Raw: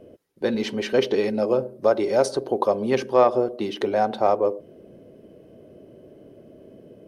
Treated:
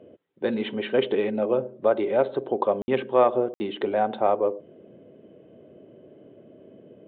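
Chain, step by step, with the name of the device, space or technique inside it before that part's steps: call with lost packets (high-pass 110 Hz 12 dB/octave; resampled via 8 kHz; lost packets of 60 ms); trim -2 dB

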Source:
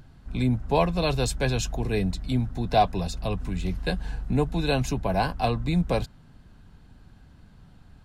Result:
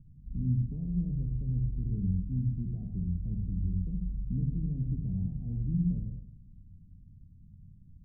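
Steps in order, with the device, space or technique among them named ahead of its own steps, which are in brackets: club heard from the street (peak limiter -17 dBFS, peak gain reduction 8 dB; low-pass 220 Hz 24 dB/octave; reverberation RT60 0.60 s, pre-delay 57 ms, DRR 1.5 dB); trim -5 dB

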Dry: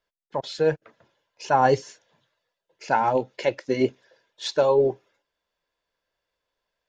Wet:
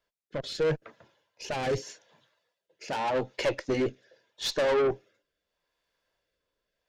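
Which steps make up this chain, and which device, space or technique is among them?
overdriven rotary cabinet (valve stage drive 26 dB, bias 0.35; rotary cabinet horn 0.8 Hz); 1.78–3.16 s: high-pass 160 Hz 6 dB/octave; trim +4.5 dB

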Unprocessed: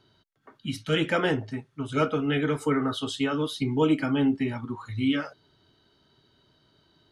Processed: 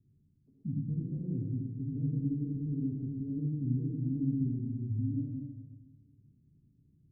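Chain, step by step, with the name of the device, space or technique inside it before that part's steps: club heard from the street (peak limiter -22.5 dBFS, peak gain reduction 11 dB; low-pass 220 Hz 24 dB/octave; reverberation RT60 1.3 s, pre-delay 64 ms, DRR 0 dB)

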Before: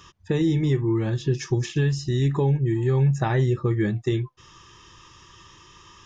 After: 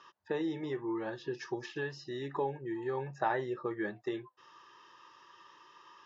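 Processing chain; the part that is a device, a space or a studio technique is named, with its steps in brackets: phone earpiece (cabinet simulation 430–4500 Hz, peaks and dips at 590 Hz +4 dB, 890 Hz +5 dB, 1.6 kHz +3 dB, 2.3 kHz -7 dB, 3.4 kHz -7 dB); trim -6 dB

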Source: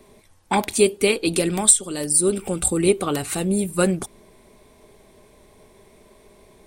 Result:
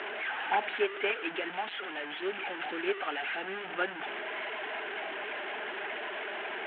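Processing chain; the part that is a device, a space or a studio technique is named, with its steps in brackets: 0.97–2.57 s: steep low-pass 4.8 kHz 96 dB/octave; peaking EQ 120 Hz -3.5 dB 1.2 oct; reverb removal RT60 1.1 s; digital answering machine (band-pass 300–3300 Hz; one-bit delta coder 16 kbps, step -24 dBFS; cabinet simulation 480–3900 Hz, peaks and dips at 530 Hz -8 dB, 760 Hz +3 dB, 1.1 kHz -7 dB, 1.6 kHz +7 dB, 3 kHz +4 dB); trim -5.5 dB

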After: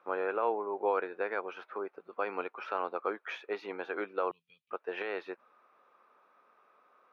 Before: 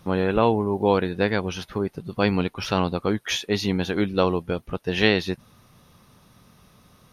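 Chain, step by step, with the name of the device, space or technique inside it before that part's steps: laptop speaker (high-pass 410 Hz 24 dB/octave; peaking EQ 1.3 kHz +6 dB 0.45 oct; peaking EQ 2.4 kHz +10 dB 0.22 oct; peak limiter -11.5 dBFS, peak gain reduction 10 dB); 4.31–4.71 s: elliptic band-stop 140–3200 Hz, stop band 40 dB; FFT filter 1.5 kHz 0 dB, 2.2 kHz -9 dB, 7.9 kHz -29 dB; trim -7 dB

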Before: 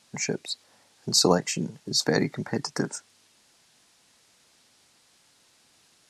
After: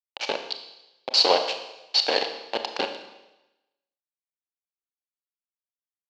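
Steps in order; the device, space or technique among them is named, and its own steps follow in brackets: 1.09–2.55 s: high-pass 380 Hz 6 dB/octave; hand-held game console (bit crusher 4-bit; cabinet simulation 460–4500 Hz, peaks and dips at 550 Hz +8 dB, 820 Hz +8 dB, 1.3 kHz -4 dB, 1.9 kHz -5 dB, 2.9 kHz +9 dB, 4.3 kHz +9 dB); Schroeder reverb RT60 0.98 s, combs from 27 ms, DRR 6.5 dB

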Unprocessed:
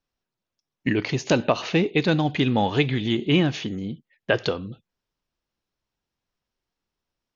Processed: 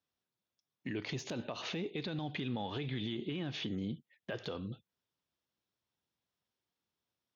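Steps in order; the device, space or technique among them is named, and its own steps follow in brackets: broadcast voice chain (high-pass 75 Hz 24 dB/octave; de-esser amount 70%; compression 3:1, threshold -27 dBFS, peak gain reduction 10 dB; peaking EQ 3.5 kHz +5.5 dB 0.24 oct; peak limiter -23.5 dBFS, peak gain reduction 10.5 dB); 1.99–3.82 s: low-pass 5.7 kHz 24 dB/octave; trim -5.5 dB

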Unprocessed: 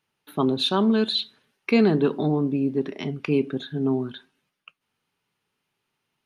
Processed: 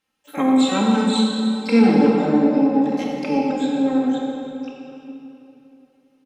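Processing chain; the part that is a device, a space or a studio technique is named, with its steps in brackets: low-pass that closes with the level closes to 2.9 kHz, closed at -19 dBFS; shimmer-style reverb (harmony voices +12 st -8 dB; reverberation RT60 3.2 s, pre-delay 21 ms, DRR -2 dB); comb 3.8 ms, depth 91%; trim -3 dB

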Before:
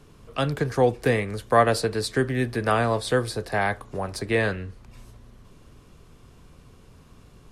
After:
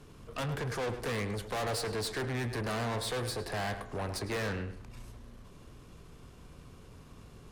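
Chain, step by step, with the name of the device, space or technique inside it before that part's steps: rockabilly slapback (valve stage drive 32 dB, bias 0.4; tape echo 105 ms, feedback 34%, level -8 dB, low-pass 2.8 kHz)

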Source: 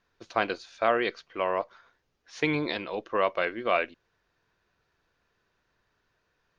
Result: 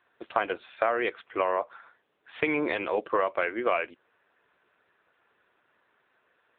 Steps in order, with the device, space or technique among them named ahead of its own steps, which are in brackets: voicemail (band-pass 310–3300 Hz; compression 6:1, threshold -30 dBFS, peak gain reduction 11.5 dB; trim +8.5 dB; AMR-NB 7.95 kbps 8 kHz)

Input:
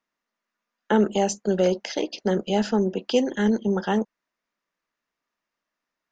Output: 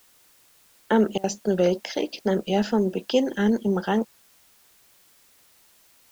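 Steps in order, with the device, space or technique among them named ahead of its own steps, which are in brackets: worn cassette (low-pass 6.3 kHz; wow and flutter; level dips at 1.18 s, 57 ms -23 dB; white noise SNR 32 dB)

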